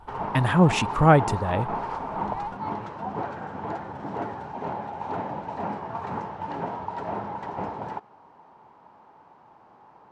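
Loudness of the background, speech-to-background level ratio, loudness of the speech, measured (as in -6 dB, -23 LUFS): -32.5 LUFS, 11.0 dB, -21.5 LUFS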